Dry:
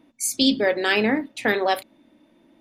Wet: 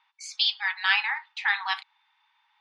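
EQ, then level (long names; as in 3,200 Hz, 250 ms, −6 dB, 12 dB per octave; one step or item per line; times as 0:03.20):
linear-phase brick-wall high-pass 780 Hz
low-pass filter 4,800 Hz 24 dB per octave
0.0 dB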